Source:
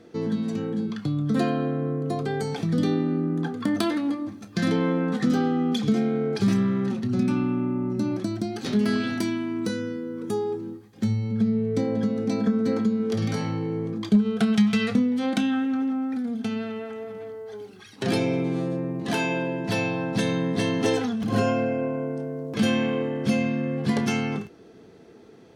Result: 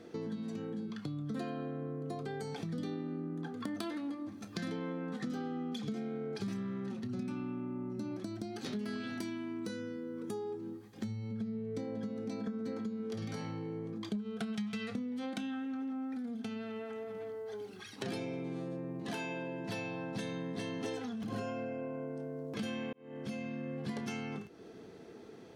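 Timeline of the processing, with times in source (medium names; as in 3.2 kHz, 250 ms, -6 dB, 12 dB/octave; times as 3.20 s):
22.93–23.76 s: fade in
whole clip: bass shelf 130 Hz -4 dB; compression 3:1, threshold -39 dBFS; trim -1.5 dB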